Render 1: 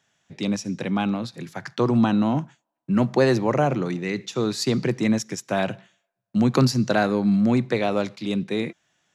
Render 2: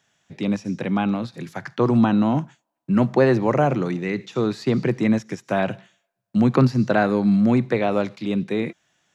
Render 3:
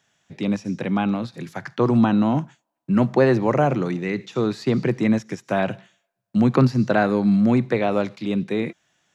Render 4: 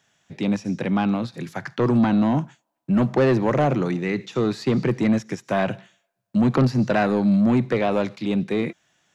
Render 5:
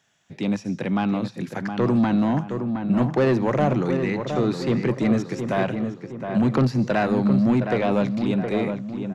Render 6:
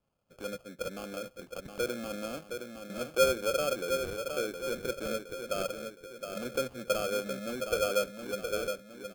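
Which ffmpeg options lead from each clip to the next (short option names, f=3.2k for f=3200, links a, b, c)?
-filter_complex "[0:a]acrossover=split=2900[a][b];[b]acompressor=threshold=-47dB:ratio=4:attack=1:release=60[c];[a][c]amix=inputs=2:normalize=0,volume=2dB"
-af anull
-af "asoftclip=type=tanh:threshold=-13.5dB,volume=1.5dB"
-filter_complex "[0:a]asplit=2[a][b];[b]adelay=716,lowpass=f=2k:p=1,volume=-6.5dB,asplit=2[c][d];[d]adelay=716,lowpass=f=2k:p=1,volume=0.47,asplit=2[e][f];[f]adelay=716,lowpass=f=2k:p=1,volume=0.47,asplit=2[g][h];[h]adelay=716,lowpass=f=2k:p=1,volume=0.47,asplit=2[i][j];[j]adelay=716,lowpass=f=2k:p=1,volume=0.47,asplit=2[k][l];[l]adelay=716,lowpass=f=2k:p=1,volume=0.47[m];[a][c][e][g][i][k][m]amix=inputs=7:normalize=0,volume=-1.5dB"
-filter_complex "[0:a]asplit=3[a][b][c];[a]bandpass=f=530:t=q:w=8,volume=0dB[d];[b]bandpass=f=1.84k:t=q:w=8,volume=-6dB[e];[c]bandpass=f=2.48k:t=q:w=8,volume=-9dB[f];[d][e][f]amix=inputs=3:normalize=0,acrusher=samples=23:mix=1:aa=0.000001"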